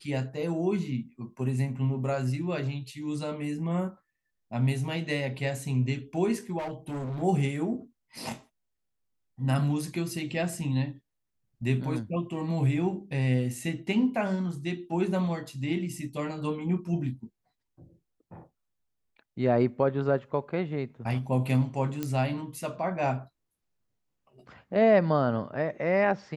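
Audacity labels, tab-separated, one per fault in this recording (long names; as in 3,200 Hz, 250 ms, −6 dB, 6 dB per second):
6.580000	7.230000	clipping −31 dBFS
22.030000	22.030000	click −17 dBFS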